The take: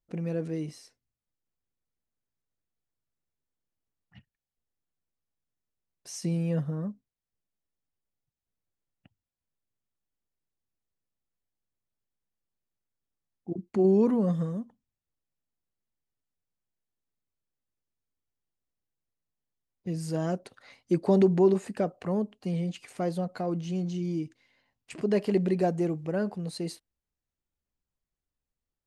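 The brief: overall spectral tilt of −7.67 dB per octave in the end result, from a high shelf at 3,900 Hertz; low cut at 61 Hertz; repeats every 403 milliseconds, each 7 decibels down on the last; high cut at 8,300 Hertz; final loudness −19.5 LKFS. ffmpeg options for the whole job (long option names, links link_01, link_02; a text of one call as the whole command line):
ffmpeg -i in.wav -af "highpass=61,lowpass=8300,highshelf=frequency=3900:gain=7.5,aecho=1:1:403|806|1209|1612|2015:0.447|0.201|0.0905|0.0407|0.0183,volume=9dB" out.wav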